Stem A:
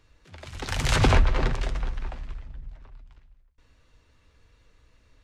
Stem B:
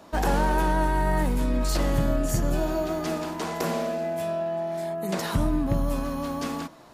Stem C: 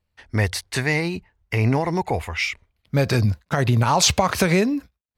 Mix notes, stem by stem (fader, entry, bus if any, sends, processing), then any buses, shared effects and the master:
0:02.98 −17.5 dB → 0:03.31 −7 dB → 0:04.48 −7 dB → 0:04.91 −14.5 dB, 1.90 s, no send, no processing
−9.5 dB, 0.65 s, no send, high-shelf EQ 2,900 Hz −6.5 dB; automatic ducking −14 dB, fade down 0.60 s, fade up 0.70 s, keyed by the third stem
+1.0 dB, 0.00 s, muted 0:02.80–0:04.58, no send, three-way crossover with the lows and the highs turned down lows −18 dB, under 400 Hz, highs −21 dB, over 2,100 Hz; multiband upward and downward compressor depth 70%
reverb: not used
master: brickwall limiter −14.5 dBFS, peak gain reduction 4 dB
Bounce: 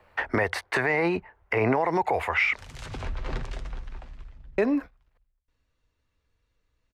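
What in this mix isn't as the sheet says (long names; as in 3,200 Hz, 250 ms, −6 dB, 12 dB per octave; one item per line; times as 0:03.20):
stem B: muted
stem C +1.0 dB → +7.0 dB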